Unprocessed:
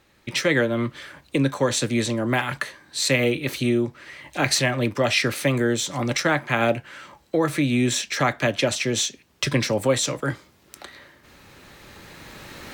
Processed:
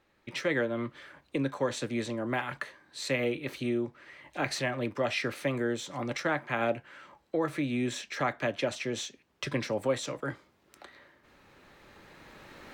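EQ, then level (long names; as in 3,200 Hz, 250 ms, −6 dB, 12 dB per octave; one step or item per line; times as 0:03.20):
parametric band 86 Hz −6.5 dB 2.8 octaves
high-shelf EQ 3,400 Hz −11.5 dB
−6.5 dB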